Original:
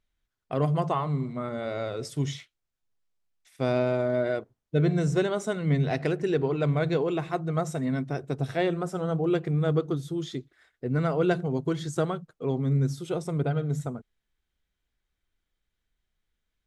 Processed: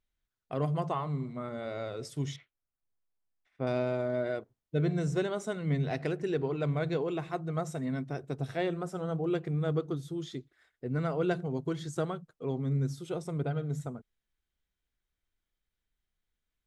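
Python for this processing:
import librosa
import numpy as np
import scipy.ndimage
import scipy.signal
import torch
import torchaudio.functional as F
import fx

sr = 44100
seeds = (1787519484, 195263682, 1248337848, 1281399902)

y = fx.lowpass(x, sr, hz=1800.0, slope=12, at=(2.36, 3.67))
y = y * librosa.db_to_amplitude(-5.5)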